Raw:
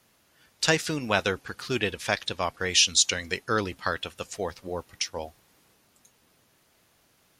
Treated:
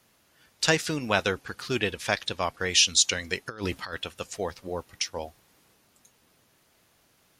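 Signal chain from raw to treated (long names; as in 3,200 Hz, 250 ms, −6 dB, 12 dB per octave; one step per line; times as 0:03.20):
0:03.46–0:03.95: compressor whose output falls as the input rises −32 dBFS, ratio −0.5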